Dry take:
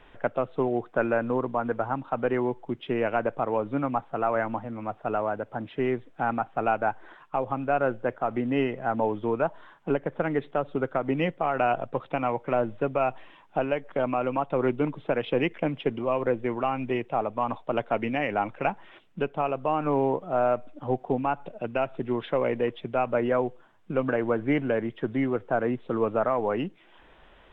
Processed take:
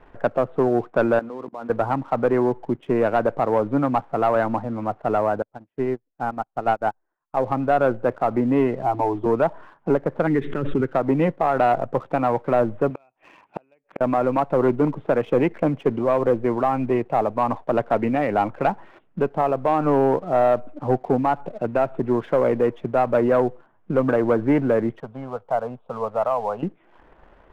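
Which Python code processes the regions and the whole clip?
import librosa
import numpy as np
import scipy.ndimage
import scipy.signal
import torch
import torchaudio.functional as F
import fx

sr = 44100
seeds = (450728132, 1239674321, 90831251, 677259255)

y = fx.chain(x, sr, fx.hum_notches(base_hz=60, count=6),
    fx.level_steps(step_db=20),
    fx.highpass(hz=180.0, slope=12), at=(1.19, 1.7))
y = fx.chain(y, sr, fx.low_shelf(hz=64.0, db=4.0),
    fx.upward_expand(threshold_db=-43.0, expansion=2.5), at=(5.42, 7.37))
y = fx.chain(y, sr, fx.fixed_phaser(hz=340.0, stages=8),
    fx.band_squash(depth_pct=40), at=(8.82, 9.26))
y = fx.chain(y, sr, fx.curve_eq(hz=(390.0, 720.0, 1800.0), db=(0, -22, 3)),
    fx.pre_swell(db_per_s=41.0), at=(10.27, 10.93))
y = fx.chain(y, sr, fx.gate_flip(shuts_db=-25.0, range_db=-35),
    fx.highpass(hz=150.0, slope=6),
    fx.peak_eq(hz=2500.0, db=14.0, octaves=0.44), at=(12.9, 14.01))
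y = fx.chain(y, sr, fx.low_shelf(hz=350.0, db=-10.0),
    fx.fixed_phaser(hz=800.0, stages=4), at=(25.0, 26.63))
y = scipy.signal.sosfilt(scipy.signal.butter(2, 1400.0, 'lowpass', fs=sr, output='sos'), y)
y = fx.leveller(y, sr, passes=1)
y = F.gain(torch.from_numpy(y), 4.0).numpy()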